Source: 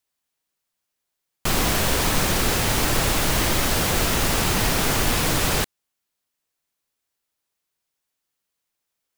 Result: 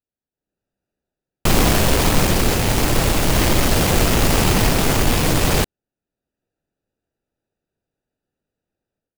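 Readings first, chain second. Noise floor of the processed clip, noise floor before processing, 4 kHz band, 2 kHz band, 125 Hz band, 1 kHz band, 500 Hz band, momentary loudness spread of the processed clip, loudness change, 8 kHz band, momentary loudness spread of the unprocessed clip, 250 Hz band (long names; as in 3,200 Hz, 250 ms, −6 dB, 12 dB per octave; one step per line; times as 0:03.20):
below −85 dBFS, −81 dBFS, +2.0 dB, +2.0 dB, +7.0 dB, +3.5 dB, +6.0 dB, 3 LU, +3.5 dB, +1.5 dB, 2 LU, +7.0 dB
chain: adaptive Wiener filter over 41 samples
automatic gain control gain up to 14 dB
level −1 dB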